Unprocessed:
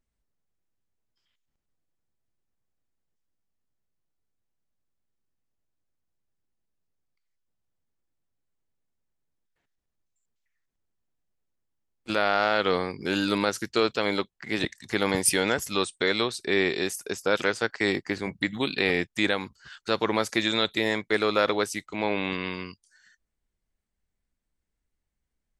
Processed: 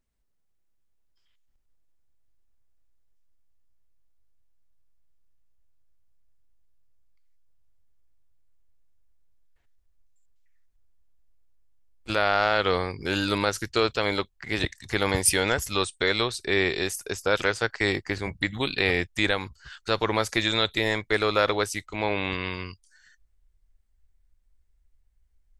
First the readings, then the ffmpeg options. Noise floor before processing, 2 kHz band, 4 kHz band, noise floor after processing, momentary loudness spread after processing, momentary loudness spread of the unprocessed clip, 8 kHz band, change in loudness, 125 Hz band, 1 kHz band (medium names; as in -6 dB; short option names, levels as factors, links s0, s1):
-82 dBFS, +1.5 dB, +1.5 dB, -68 dBFS, 7 LU, 7 LU, +1.5 dB, +1.0 dB, +5.0 dB, +1.0 dB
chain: -af "asubboost=boost=8.5:cutoff=68,volume=1.19"